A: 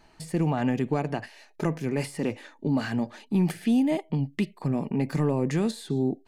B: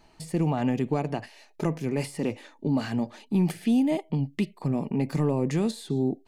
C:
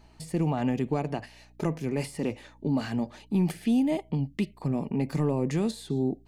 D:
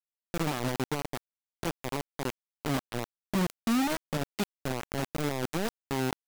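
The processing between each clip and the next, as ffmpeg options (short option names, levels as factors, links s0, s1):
-af "equalizer=f=1600:w=2.5:g=-5"
-af "aeval=exprs='val(0)+0.00178*(sin(2*PI*60*n/s)+sin(2*PI*2*60*n/s)/2+sin(2*PI*3*60*n/s)/3+sin(2*PI*4*60*n/s)/4+sin(2*PI*5*60*n/s)/5)':c=same,volume=0.841"
-af "acrusher=bits=3:mix=0:aa=0.000001,volume=0.531"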